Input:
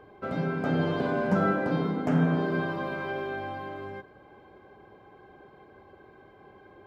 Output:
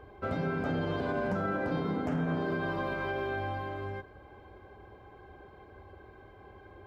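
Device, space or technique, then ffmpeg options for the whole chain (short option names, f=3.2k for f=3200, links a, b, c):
car stereo with a boomy subwoofer: -af "lowshelf=f=110:t=q:w=1.5:g=9.5,alimiter=limit=-23dB:level=0:latency=1:release=100"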